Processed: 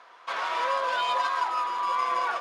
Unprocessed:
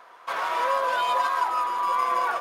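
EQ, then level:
band-pass filter 110–4,700 Hz
high-shelf EQ 3,000 Hz +11.5 dB
−4.0 dB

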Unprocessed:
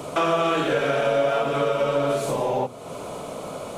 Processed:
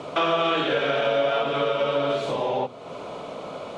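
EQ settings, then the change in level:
Chebyshev low-pass filter 3,700 Hz, order 2
dynamic equaliser 3,400 Hz, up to +6 dB, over −49 dBFS, Q 2.6
low-shelf EQ 130 Hz −8.5 dB
0.0 dB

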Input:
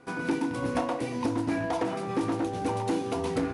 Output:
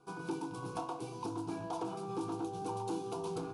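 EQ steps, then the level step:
phaser with its sweep stopped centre 380 Hz, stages 8
−6.5 dB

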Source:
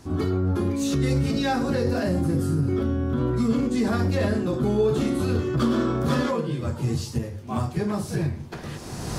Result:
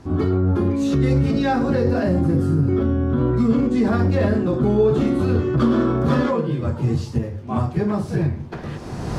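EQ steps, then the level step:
low-pass filter 1,800 Hz 6 dB per octave
+5.0 dB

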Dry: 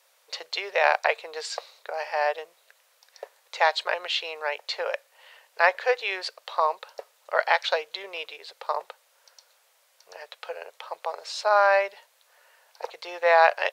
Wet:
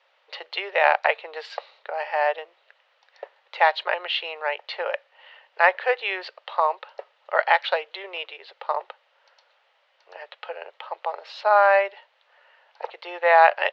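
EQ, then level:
loudspeaker in its box 320–4,000 Hz, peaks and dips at 360 Hz +7 dB, 580 Hz +4 dB, 840 Hz +6 dB, 1,300 Hz +4 dB, 1,900 Hz +5 dB, 2,900 Hz +6 dB
−2.0 dB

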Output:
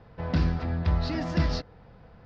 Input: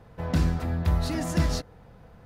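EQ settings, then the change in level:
Chebyshev low-pass filter 5,100 Hz, order 4
0.0 dB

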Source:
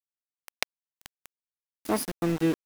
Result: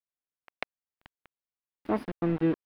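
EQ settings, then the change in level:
high-frequency loss of the air 470 metres
0.0 dB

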